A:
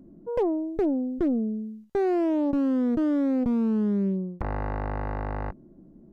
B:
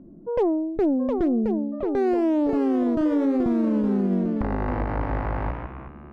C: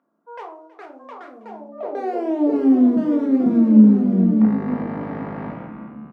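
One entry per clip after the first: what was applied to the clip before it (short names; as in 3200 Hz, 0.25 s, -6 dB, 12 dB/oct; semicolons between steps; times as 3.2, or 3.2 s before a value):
echoes that change speed 0.754 s, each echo +2 st, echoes 3, each echo -6 dB; low-pass opened by the level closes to 1500 Hz, open at -19.5 dBFS; limiter -18.5 dBFS, peak gain reduction 4 dB; gain +3.5 dB
high-pass sweep 1200 Hz -> 200 Hz, 1.26–2.97; echo 0.322 s -19 dB; reverb RT60 0.45 s, pre-delay 4 ms, DRR 0.5 dB; gain -5 dB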